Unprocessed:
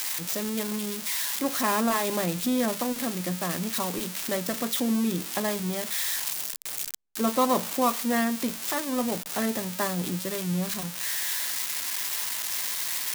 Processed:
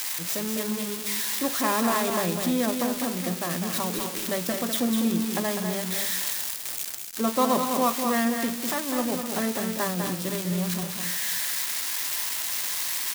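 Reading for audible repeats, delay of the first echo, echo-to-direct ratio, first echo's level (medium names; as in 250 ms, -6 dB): 3, 201 ms, -4.5 dB, -6.0 dB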